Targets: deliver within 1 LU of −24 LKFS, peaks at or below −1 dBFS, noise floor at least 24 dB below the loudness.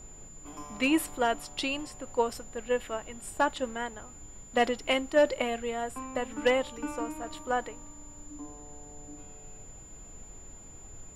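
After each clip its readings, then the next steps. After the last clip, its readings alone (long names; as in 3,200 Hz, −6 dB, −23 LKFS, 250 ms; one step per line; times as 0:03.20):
interfering tone 7,100 Hz; level of the tone −49 dBFS; background noise floor −49 dBFS; target noise floor −55 dBFS; integrated loudness −30.5 LKFS; sample peak −14.5 dBFS; target loudness −24.0 LKFS
→ notch filter 7,100 Hz, Q 30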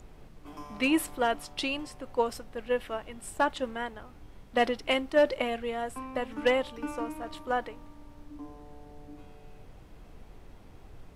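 interfering tone none found; background noise floor −51 dBFS; target noise floor −55 dBFS
→ noise reduction from a noise print 6 dB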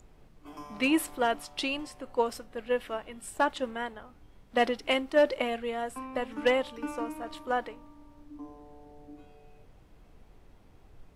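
background noise floor −57 dBFS; integrated loudness −30.5 LKFS; sample peak −14.5 dBFS; target loudness −24.0 LKFS
→ level +6.5 dB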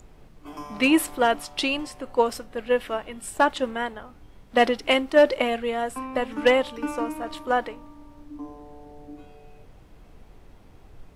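integrated loudness −24.0 LKFS; sample peak −8.0 dBFS; background noise floor −50 dBFS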